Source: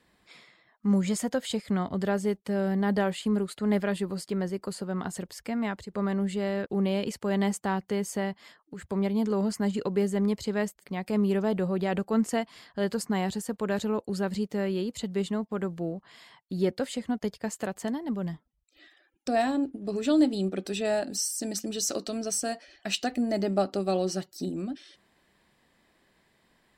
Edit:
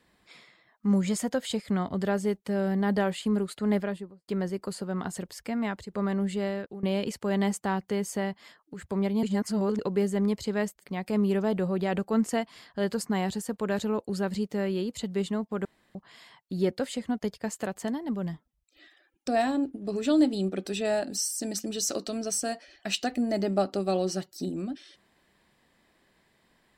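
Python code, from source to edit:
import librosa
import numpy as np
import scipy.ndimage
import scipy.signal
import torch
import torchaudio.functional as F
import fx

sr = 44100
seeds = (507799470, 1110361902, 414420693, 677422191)

y = fx.studio_fade_out(x, sr, start_s=3.67, length_s=0.61)
y = fx.edit(y, sr, fx.fade_out_to(start_s=6.44, length_s=0.39, floor_db=-20.0),
    fx.reverse_span(start_s=9.23, length_s=0.56),
    fx.room_tone_fill(start_s=15.65, length_s=0.3), tone=tone)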